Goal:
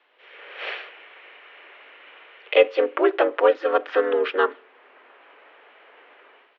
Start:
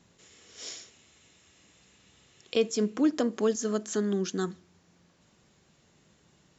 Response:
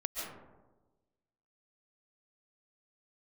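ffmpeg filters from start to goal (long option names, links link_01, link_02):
-filter_complex "[0:a]asplit=2[link_01][link_02];[link_02]asetrate=35002,aresample=44100,atempo=1.25992,volume=-2dB[link_03];[link_01][link_03]amix=inputs=2:normalize=0,acrossover=split=2400[link_04][link_05];[link_04]dynaudnorm=framelen=120:gausssize=5:maxgain=15dB[link_06];[link_06][link_05]amix=inputs=2:normalize=0,highpass=frequency=320:width_type=q:width=0.5412,highpass=frequency=320:width_type=q:width=1.307,lowpass=frequency=3000:width_type=q:width=0.5176,lowpass=frequency=3000:width_type=q:width=0.7071,lowpass=frequency=3000:width_type=q:width=1.932,afreqshift=89,tiltshelf=frequency=930:gain=-5.5,volume=1.5dB"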